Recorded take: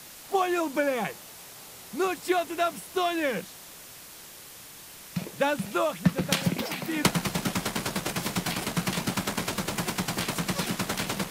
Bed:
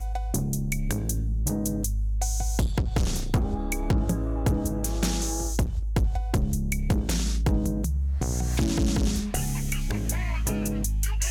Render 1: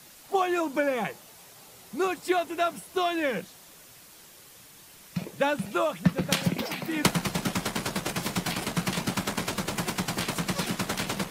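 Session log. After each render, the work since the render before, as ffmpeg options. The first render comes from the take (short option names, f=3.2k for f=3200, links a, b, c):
-af "afftdn=nr=6:nf=-46"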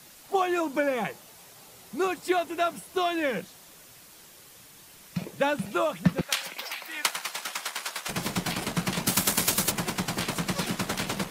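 -filter_complex "[0:a]asettb=1/sr,asplit=3[a][b][c];[a]atrim=end=6.214[d];[b]atrim=start=6.21:end=8.09,asetpts=PTS-STARTPTS,afade=t=in:d=0.004:c=qsin,afade=t=out:st=1.876:d=0.004:c=qsin,highpass=1k[e];[c]atrim=start=8.086[f];[d][e]acrossfade=d=0.004:c1=hsin:c2=qsin[g];[g][f]acrossfade=d=0.004:c1=qsin:c2=hsin,asplit=3[h][i][j];[h]afade=t=out:st=9.06:d=0.02[k];[i]aemphasis=mode=production:type=75kf,afade=t=in:st=9.06:d=0.02,afade=t=out:st=9.7:d=0.02[l];[j]afade=t=in:st=9.7:d=0.02[m];[k][l][m]amix=inputs=3:normalize=0"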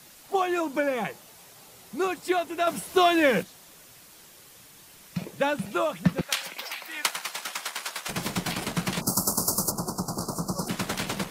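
-filter_complex "[0:a]asettb=1/sr,asplit=3[a][b][c];[a]atrim=end=2.674[d];[b]atrim=start=2.67:end=3.43,asetpts=PTS-STARTPTS,afade=t=in:d=0.004:c=qsin,afade=t=out:st=0.756:d=0.004:c=qsin,acontrast=78[e];[c]atrim=start=3.426[f];[d][e]acrossfade=d=0.004:c1=hsin:c2=qsin[g];[g][f]acrossfade=d=0.004:c1=qsin:c2=hsin,asplit=3[h][i][j];[h]afade=t=out:st=9:d=0.02[k];[i]asuperstop=centerf=2500:order=12:qfactor=0.75,afade=t=in:st=9:d=0.02,afade=t=out:st=10.68:d=0.02[l];[j]afade=t=in:st=10.68:d=0.02[m];[k][l][m]amix=inputs=3:normalize=0"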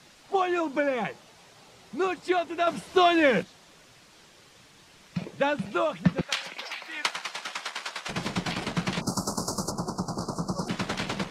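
-af "lowpass=5.4k"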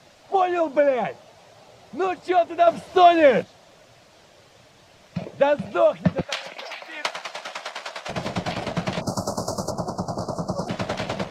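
-af "equalizer=f=100:t=o:w=0.67:g=8,equalizer=f=630:t=o:w=0.67:g=11,equalizer=f=10k:t=o:w=0.67:g=-5"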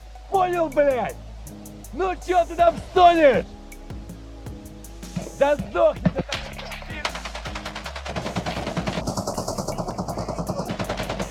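-filter_complex "[1:a]volume=-12.5dB[a];[0:a][a]amix=inputs=2:normalize=0"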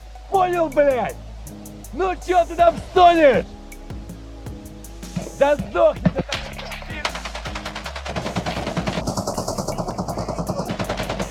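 -af "volume=2.5dB,alimiter=limit=-3dB:level=0:latency=1"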